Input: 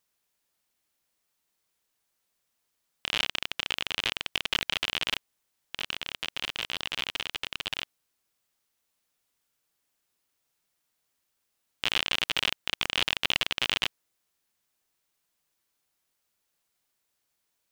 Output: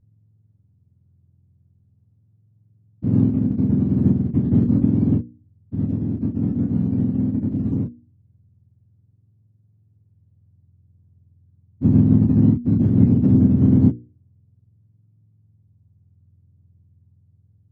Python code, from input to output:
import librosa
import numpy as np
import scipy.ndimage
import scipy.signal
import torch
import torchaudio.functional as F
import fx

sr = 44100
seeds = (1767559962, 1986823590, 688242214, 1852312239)

y = fx.octave_mirror(x, sr, pivot_hz=870.0)
y = fx.low_shelf(y, sr, hz=310.0, db=8.5)
y = fx.hum_notches(y, sr, base_hz=60, count=8)
y = fx.chorus_voices(y, sr, voices=2, hz=0.18, base_ms=28, depth_ms=3.0, mix_pct=40)
y = fx.riaa(y, sr, side='playback')
y = y * 10.0 ** (-1.0 / 20.0)